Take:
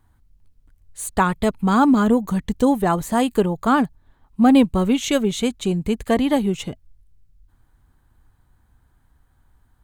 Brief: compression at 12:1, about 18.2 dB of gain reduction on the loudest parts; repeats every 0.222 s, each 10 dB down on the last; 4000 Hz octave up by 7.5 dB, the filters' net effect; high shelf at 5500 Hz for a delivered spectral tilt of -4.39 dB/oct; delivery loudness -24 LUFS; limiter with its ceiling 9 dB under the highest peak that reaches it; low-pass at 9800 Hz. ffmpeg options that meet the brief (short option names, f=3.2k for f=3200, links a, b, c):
-af "lowpass=9.8k,equalizer=f=4k:t=o:g=8,highshelf=f=5.5k:g=5.5,acompressor=threshold=-29dB:ratio=12,alimiter=level_in=3dB:limit=-24dB:level=0:latency=1,volume=-3dB,aecho=1:1:222|444|666|888:0.316|0.101|0.0324|0.0104,volume=12dB"